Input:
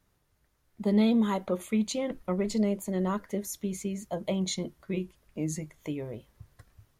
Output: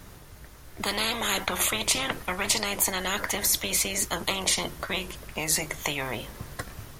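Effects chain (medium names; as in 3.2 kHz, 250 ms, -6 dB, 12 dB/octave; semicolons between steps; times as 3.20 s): spectrum-flattening compressor 10:1; trim +6 dB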